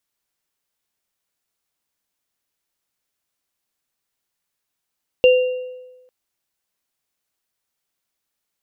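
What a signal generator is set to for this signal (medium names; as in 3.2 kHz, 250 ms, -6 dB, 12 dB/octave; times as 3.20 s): sine partials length 0.85 s, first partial 505 Hz, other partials 2.78 kHz, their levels -9 dB, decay 1.15 s, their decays 0.73 s, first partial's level -7 dB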